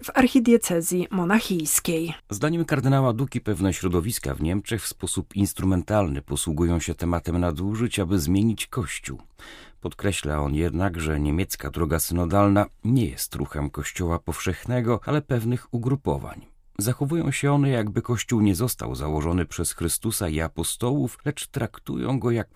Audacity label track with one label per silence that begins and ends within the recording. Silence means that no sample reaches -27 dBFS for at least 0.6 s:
9.140000	9.850000	silence